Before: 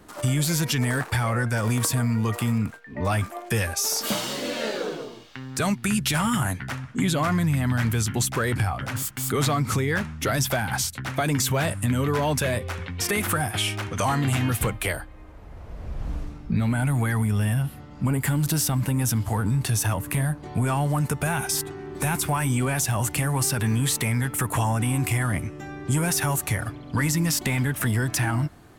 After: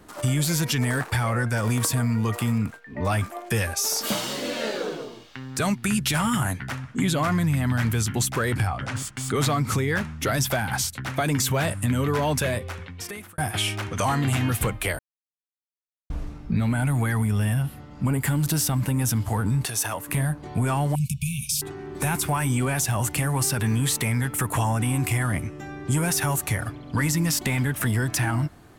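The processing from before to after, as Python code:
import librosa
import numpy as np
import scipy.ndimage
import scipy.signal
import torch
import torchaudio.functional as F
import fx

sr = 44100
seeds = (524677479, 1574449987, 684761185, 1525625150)

y = fx.savgol(x, sr, points=9, at=(8.67, 9.36))
y = fx.bass_treble(y, sr, bass_db=-14, treble_db=1, at=(19.65, 20.09))
y = fx.brickwall_bandstop(y, sr, low_hz=220.0, high_hz=2200.0, at=(20.95, 21.62))
y = fx.edit(y, sr, fx.fade_out_span(start_s=12.44, length_s=0.94),
    fx.silence(start_s=14.99, length_s=1.11), tone=tone)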